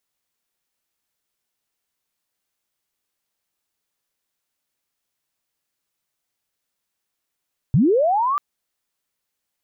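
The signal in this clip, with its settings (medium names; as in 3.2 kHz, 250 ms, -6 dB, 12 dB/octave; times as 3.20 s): sweep linear 110 Hz -> 1.2 kHz -11.5 dBFS -> -18 dBFS 0.64 s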